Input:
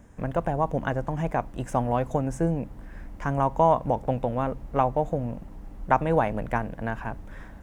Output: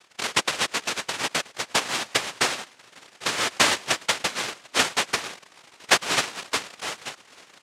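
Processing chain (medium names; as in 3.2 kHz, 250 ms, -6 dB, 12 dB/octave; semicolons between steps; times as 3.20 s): transient shaper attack +9 dB, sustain -7 dB; on a send: feedback delay 108 ms, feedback 31%, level -23 dB; on the sum: noise-vocoded speech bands 1; tone controls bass -6 dB, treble -8 dB; trim -1.5 dB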